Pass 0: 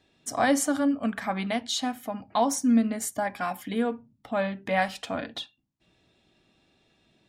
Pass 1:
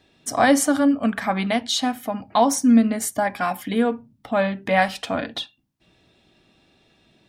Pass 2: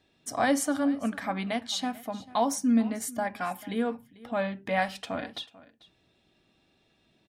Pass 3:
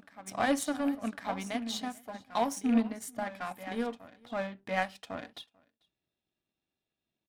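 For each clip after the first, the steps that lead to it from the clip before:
parametric band 7,100 Hz −3.5 dB 0.22 octaves; level +6.5 dB
single-tap delay 442 ms −20 dB; level −8.5 dB
loose part that buzzes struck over −28 dBFS, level −29 dBFS; backwards echo 1,103 ms −9 dB; power curve on the samples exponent 1.4; level −1 dB

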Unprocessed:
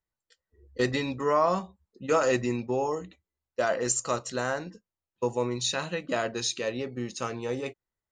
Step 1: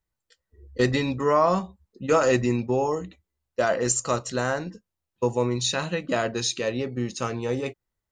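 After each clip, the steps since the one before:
low-shelf EQ 190 Hz +6.5 dB
level +3 dB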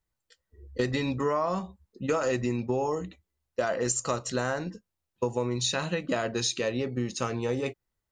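downward compressor, threshold −24 dBFS, peak gain reduction 8.5 dB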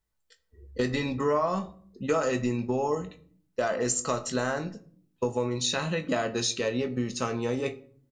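double-tracking delay 20 ms −11.5 dB
on a send at −11 dB: convolution reverb RT60 0.55 s, pre-delay 5 ms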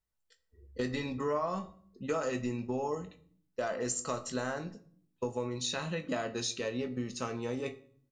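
tuned comb filter 85 Hz, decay 0.52 s, harmonics all, mix 40%
level −3 dB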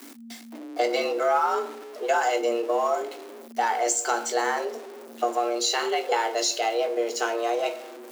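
converter with a step at zero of −46 dBFS
frequency shifter +230 Hz
level +9 dB

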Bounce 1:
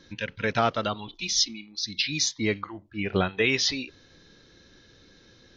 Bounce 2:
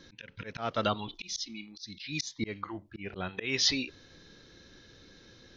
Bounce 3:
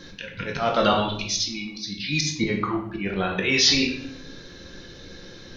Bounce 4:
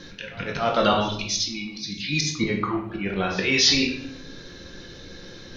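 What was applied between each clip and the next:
volume swells 277 ms
convolution reverb RT60 0.70 s, pre-delay 6 ms, DRR 0.5 dB; in parallel at 0 dB: brickwall limiter −22.5 dBFS, peak gain reduction 10.5 dB; on the sum: level +3.5 dB
reversed playback; upward compression, threshold −37 dBFS; reversed playback; echo ahead of the sound 283 ms −22 dB

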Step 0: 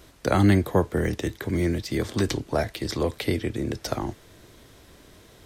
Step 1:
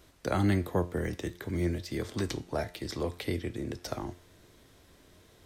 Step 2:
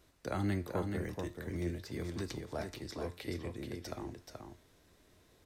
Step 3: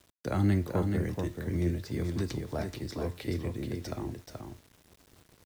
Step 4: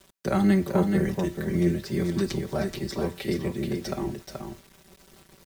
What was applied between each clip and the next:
tuned comb filter 88 Hz, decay 0.47 s, harmonics all, mix 50%; level −3 dB
notch filter 3,200 Hz, Q 20; on a send: single-tap delay 429 ms −5.5 dB; on the sum: level −7.5 dB
bit-depth reduction 10 bits, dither none; parametric band 120 Hz +7 dB 2.9 octaves; level +2.5 dB
comb filter 5.2 ms, depth 98%; level +4 dB

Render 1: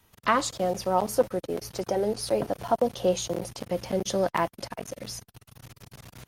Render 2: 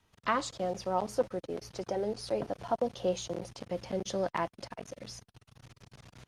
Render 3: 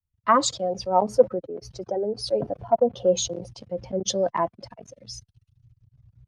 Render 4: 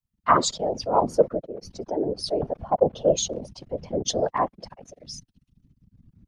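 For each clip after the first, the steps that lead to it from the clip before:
low-pass filter 7,000 Hz 12 dB per octave; level −6.5 dB
expanding power law on the bin magnitudes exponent 1.6; multiband upward and downward expander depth 100%; level +7.5 dB
random phases in short frames

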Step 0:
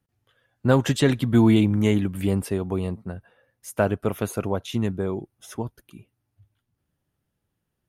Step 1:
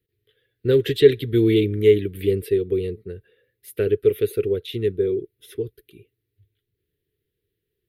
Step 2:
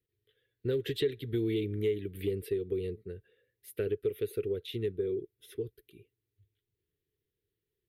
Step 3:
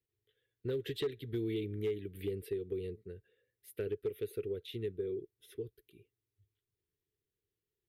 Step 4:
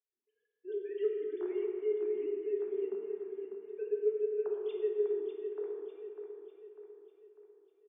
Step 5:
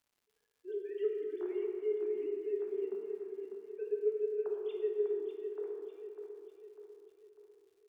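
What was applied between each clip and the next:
drawn EQ curve 110 Hz 0 dB, 240 Hz −9 dB, 430 Hz +15 dB, 610 Hz −16 dB, 880 Hz −29 dB, 1,900 Hz +3 dB, 2,700 Hz +2 dB, 3,900 Hz +6 dB, 6,500 Hz −15 dB, 13,000 Hz +6 dB; level −2 dB
downward compressor 3 to 1, threshold −21 dBFS, peak gain reduction 11 dB; level −8 dB
hard clipping −23 dBFS, distortion −27 dB; level −5 dB
three sine waves on the formant tracks; on a send: repeating echo 598 ms, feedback 48%, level −8.5 dB; on the sum: dense smooth reverb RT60 2.5 s, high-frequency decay 0.5×, DRR −0.5 dB; level −1.5 dB
surface crackle 300 per second −63 dBFS; level −1.5 dB

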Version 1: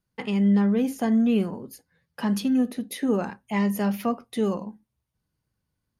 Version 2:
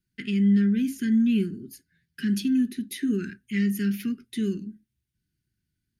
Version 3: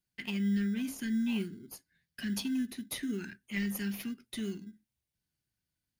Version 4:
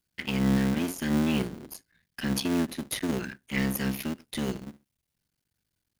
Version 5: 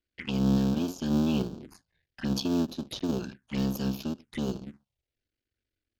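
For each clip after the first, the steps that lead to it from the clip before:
Chebyshev band-stop filter 380–1,500 Hz, order 4
tilt shelving filter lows −5.5 dB, about 920 Hz; in parallel at −12 dB: sample-rate reduction 1,800 Hz, jitter 0%; on the sum: level −7 dB
sub-harmonics by changed cycles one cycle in 3, muted; level +7.5 dB
phaser swept by the level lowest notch 160 Hz, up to 2,000 Hz, full sweep at −30 dBFS; low-pass that shuts in the quiet parts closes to 2,900 Hz, open at −26.5 dBFS

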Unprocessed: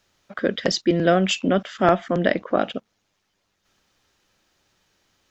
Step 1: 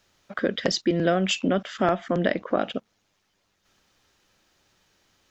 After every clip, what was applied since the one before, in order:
downward compressor 2 to 1, threshold −23 dBFS, peak gain reduction 7 dB
level +1 dB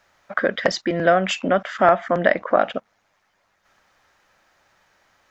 flat-topped bell 1,100 Hz +10 dB 2.3 octaves
level −1 dB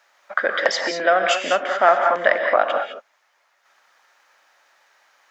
high-pass filter 610 Hz 12 dB per octave
reverb whose tail is shaped and stops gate 230 ms rising, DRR 3.5 dB
level +2 dB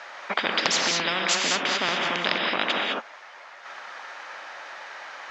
high-frequency loss of the air 140 metres
every bin compressed towards the loudest bin 10 to 1
level −2.5 dB

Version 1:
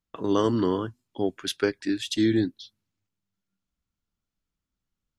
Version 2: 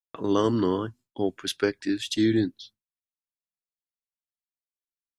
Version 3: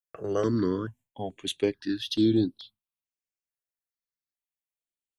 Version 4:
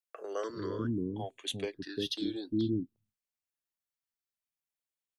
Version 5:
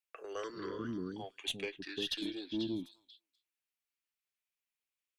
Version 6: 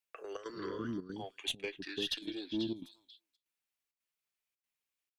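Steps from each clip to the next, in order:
downward expander −47 dBFS
step-sequenced phaser 2.3 Hz 970–6,700 Hz
in parallel at 0 dB: downward compressor, threshold −33 dBFS, peak gain reduction 13.5 dB; on the sum: multiband delay without the direct sound highs, lows 350 ms, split 400 Hz; level −7.5 dB
graphic EQ with 15 bands 100 Hz −12 dB, 250 Hz −3 dB, 630 Hz −5 dB, 2,500 Hz +9 dB; tube saturation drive 24 dB, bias 0.2; echo through a band-pass that steps 248 ms, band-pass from 1,500 Hz, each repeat 1.4 octaves, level −6.5 dB; level −2 dB
gate pattern "xxxx.xxxxxx.x" 165 BPM −12 dB; level +1 dB

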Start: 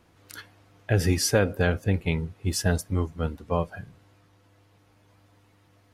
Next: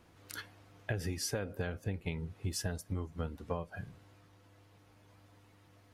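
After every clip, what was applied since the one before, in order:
downward compressor 16 to 1, threshold −30 dBFS, peak gain reduction 15 dB
level −2 dB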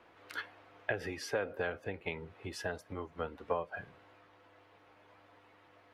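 three-way crossover with the lows and the highs turned down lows −17 dB, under 360 Hz, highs −19 dB, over 3,400 Hz
level +6 dB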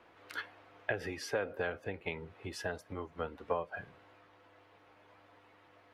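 no processing that can be heard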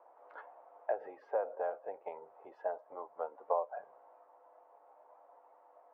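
flat-topped band-pass 730 Hz, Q 1.7
level +5.5 dB

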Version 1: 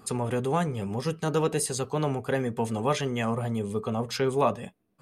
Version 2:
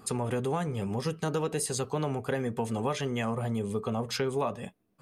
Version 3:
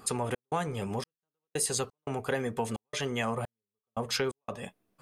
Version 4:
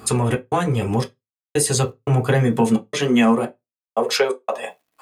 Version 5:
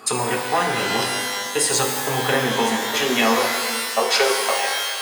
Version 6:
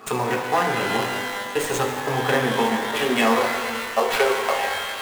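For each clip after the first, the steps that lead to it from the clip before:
downward compressor, threshold −26 dBFS, peak gain reduction 8 dB
parametric band 150 Hz −6.5 dB 3 octaves; gate pattern "xx.xxx...xx.xx" 87 BPM −60 dB; level +3 dB
high-pass filter sweep 67 Hz → 810 Hz, 0:01.43–0:04.88; bit-depth reduction 12 bits, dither none; on a send at −2 dB: convolution reverb RT60 0.15 s, pre-delay 3 ms; on the sum: level +8.5 dB
one-sided soft clipper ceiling −9 dBFS; meter weighting curve A; reverb with rising layers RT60 1.9 s, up +12 semitones, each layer −2 dB, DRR 2.5 dB; level +2 dB
running median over 9 samples

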